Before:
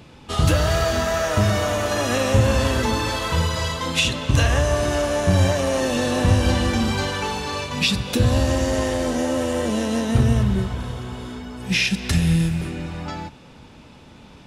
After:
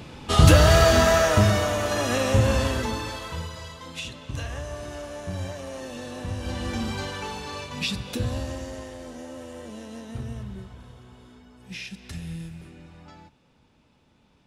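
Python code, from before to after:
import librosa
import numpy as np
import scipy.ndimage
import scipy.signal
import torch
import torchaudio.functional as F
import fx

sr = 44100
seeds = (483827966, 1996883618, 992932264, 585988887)

y = fx.gain(x, sr, db=fx.line((1.08, 4.0), (1.72, -3.0), (2.54, -3.0), (3.63, -15.0), (6.34, -15.0), (6.75, -8.0), (8.08, -8.0), (8.9, -17.0)))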